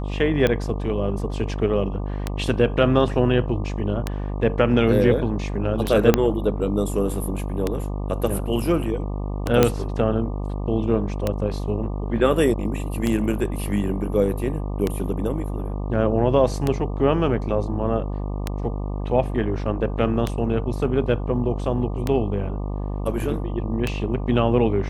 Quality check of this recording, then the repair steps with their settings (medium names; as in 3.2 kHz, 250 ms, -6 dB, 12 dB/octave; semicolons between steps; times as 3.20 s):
buzz 50 Hz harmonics 24 -27 dBFS
tick 33 1/3 rpm -8 dBFS
6.14 s: pop -2 dBFS
9.63 s: pop -2 dBFS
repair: de-click; de-hum 50 Hz, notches 24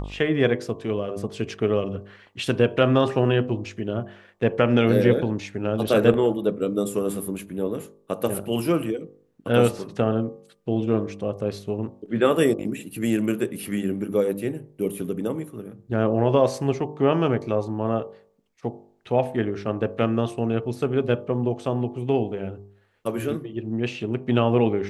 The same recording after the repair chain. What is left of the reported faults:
6.14 s: pop